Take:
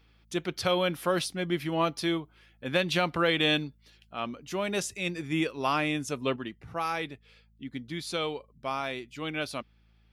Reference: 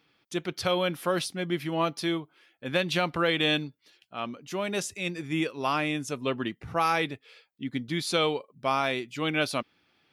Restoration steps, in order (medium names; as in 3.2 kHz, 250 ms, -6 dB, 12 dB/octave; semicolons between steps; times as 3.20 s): de-hum 54.8 Hz, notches 4; gain correction +6 dB, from 6.36 s